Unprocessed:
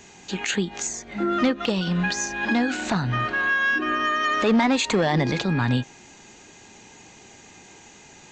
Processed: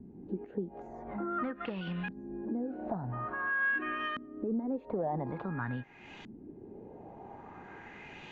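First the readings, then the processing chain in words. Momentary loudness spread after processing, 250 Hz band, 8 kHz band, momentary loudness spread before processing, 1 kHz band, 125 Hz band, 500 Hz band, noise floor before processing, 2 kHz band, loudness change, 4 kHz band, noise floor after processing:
17 LU, −12.5 dB, below −40 dB, 8 LU, −12.5 dB, −13.5 dB, −11.5 dB, −49 dBFS, −11.5 dB, −12.5 dB, −21.5 dB, −52 dBFS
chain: high-shelf EQ 2,800 Hz −8.5 dB
downward compressor 3 to 1, threshold −40 dBFS, peak gain reduction 17 dB
auto-filter low-pass saw up 0.48 Hz 230–3,300 Hz

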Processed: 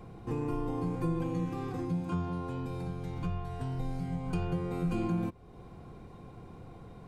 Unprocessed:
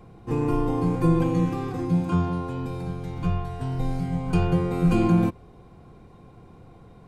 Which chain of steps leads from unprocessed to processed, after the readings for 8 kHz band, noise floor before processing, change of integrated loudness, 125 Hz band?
can't be measured, −50 dBFS, −10.0 dB, −9.5 dB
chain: downward compressor 2 to 1, threshold −38 dBFS, peak gain reduction 12.5 dB

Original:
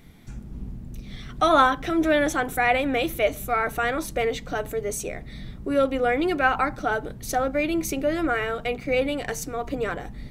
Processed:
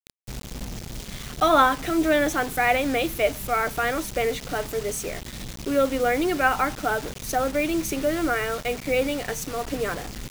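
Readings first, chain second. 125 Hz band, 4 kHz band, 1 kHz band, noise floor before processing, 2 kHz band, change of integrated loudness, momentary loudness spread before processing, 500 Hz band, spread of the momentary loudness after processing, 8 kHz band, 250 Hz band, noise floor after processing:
0.0 dB, +1.5 dB, 0.0 dB, −41 dBFS, 0.0 dB, 0.0 dB, 17 LU, 0.0 dB, 15 LU, +3.0 dB, 0.0 dB, −40 dBFS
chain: noise in a band 2,000–7,300 Hz −52 dBFS
bit reduction 6 bits

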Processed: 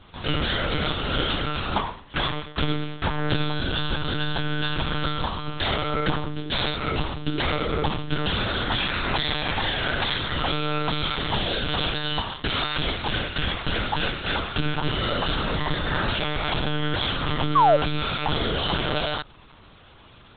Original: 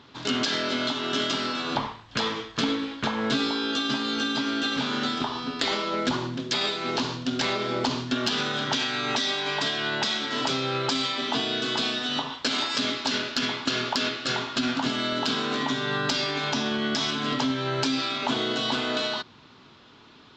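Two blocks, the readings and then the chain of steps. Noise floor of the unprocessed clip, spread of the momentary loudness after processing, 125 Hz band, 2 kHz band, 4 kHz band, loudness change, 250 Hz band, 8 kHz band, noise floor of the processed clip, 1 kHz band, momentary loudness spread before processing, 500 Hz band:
−52 dBFS, 3 LU, +9.5 dB, +1.5 dB, −0.5 dB, +1.0 dB, −2.0 dB, below −40 dB, −49 dBFS, +3.5 dB, 3 LU, +2.0 dB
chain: hum removal 89.43 Hz, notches 6
one-pitch LPC vocoder at 8 kHz 150 Hz
sound drawn into the spectrogram fall, 0:17.55–0:17.77, 540–1,200 Hz −19 dBFS
level +3 dB

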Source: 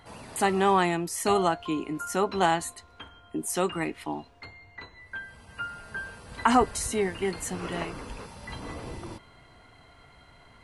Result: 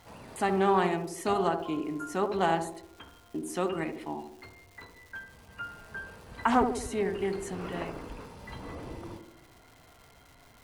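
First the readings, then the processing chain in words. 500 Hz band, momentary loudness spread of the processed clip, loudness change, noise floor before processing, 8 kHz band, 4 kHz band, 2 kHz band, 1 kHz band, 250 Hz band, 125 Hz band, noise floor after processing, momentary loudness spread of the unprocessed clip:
−1.5 dB, 21 LU, −3.0 dB, −55 dBFS, −10.0 dB, −6.5 dB, −4.5 dB, −3.0 dB, −2.0 dB, −2.5 dB, −57 dBFS, 22 LU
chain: high-shelf EQ 3,700 Hz −7 dB
surface crackle 480 per second −43 dBFS
on a send: feedback echo with a band-pass in the loop 73 ms, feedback 60%, band-pass 370 Hz, level −4.5 dB
on the sum: highs frequency-modulated by the lows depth 0.14 ms
level −3.5 dB

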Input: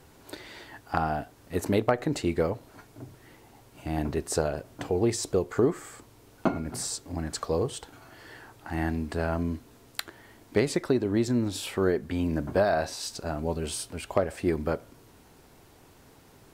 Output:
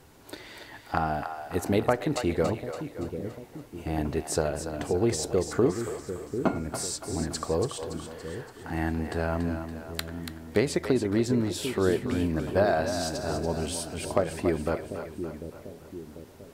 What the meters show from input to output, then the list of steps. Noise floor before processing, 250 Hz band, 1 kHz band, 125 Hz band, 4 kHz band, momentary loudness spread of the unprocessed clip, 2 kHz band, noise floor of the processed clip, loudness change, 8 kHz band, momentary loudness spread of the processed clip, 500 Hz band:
−56 dBFS, +1.0 dB, +1.0 dB, +1.0 dB, +1.0 dB, 19 LU, +1.0 dB, −49 dBFS, 0.0 dB, +1.0 dB, 15 LU, +1.0 dB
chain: echo with a time of its own for lows and highs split 470 Hz, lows 744 ms, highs 284 ms, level −8 dB

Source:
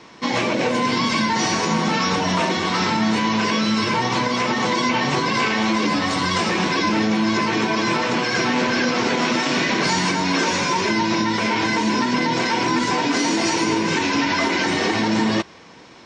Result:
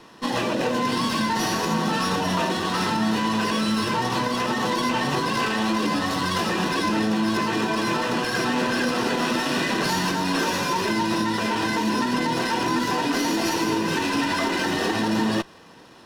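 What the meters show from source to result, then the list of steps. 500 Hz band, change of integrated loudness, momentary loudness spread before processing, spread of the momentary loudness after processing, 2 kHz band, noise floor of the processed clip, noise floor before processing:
−3.0 dB, −3.5 dB, 1 LU, 1 LU, −4.5 dB, −47 dBFS, −44 dBFS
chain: Butterworth band-reject 2,200 Hz, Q 6.7
windowed peak hold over 3 samples
level −3 dB

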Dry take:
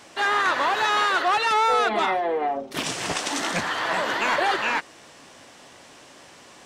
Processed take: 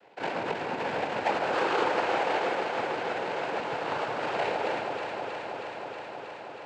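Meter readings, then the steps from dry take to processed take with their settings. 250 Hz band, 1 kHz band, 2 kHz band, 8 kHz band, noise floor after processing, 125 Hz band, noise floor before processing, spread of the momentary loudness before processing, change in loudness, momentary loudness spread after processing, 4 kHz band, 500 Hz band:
−3.0 dB, −7.0 dB, −8.5 dB, −18.0 dB, −42 dBFS, −3.0 dB, −49 dBFS, 7 LU, −7.5 dB, 11 LU, −10.5 dB, −1.5 dB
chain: parametric band 1,000 Hz −9.5 dB 0.36 octaves
sample-and-hold swept by an LFO 35×, swing 60% 0.45 Hz
cochlear-implant simulation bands 8
three-way crossover with the lows and the highs turned down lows −17 dB, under 440 Hz, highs −20 dB, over 3,500 Hz
delay that swaps between a low-pass and a high-pass 159 ms, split 1,000 Hz, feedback 90%, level −4 dB
level −2.5 dB

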